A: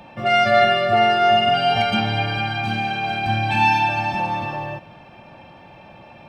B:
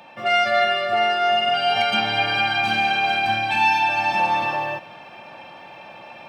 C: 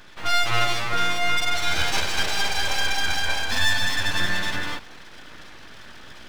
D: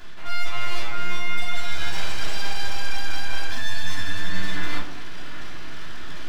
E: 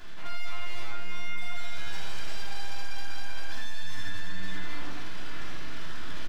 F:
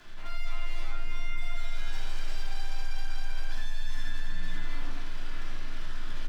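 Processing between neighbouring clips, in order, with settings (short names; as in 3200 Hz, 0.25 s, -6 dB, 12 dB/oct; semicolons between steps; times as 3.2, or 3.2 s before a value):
vocal rider within 5 dB 0.5 s; HPF 710 Hz 6 dB/oct; gain +1.5 dB
full-wave rectifier
reverse; compressor 12:1, threshold -28 dBFS, peak gain reduction 15 dB; reverse; shoebox room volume 660 m³, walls furnished, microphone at 3.1 m
limiter -17.5 dBFS, peak gain reduction 10 dB; echo 80 ms -5.5 dB; gain -3.5 dB
frequency shift -14 Hz; gain -3.5 dB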